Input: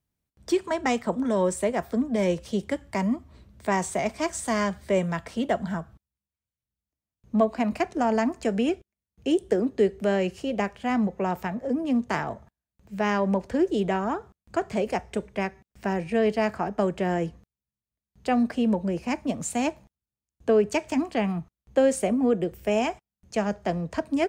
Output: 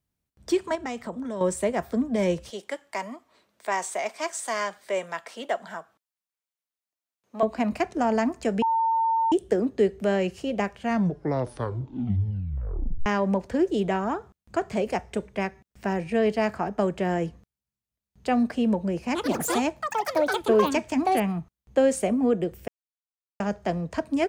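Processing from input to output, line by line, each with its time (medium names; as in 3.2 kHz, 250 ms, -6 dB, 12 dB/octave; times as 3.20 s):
0.75–1.41 s: compression 2:1, threshold -35 dBFS
2.50–7.43 s: high-pass 560 Hz
8.62–9.32 s: bleep 904 Hz -20 dBFS
10.75 s: tape stop 2.31 s
19.06–21.96 s: ever faster or slower copies 88 ms, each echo +6 st, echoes 3
22.68–23.40 s: mute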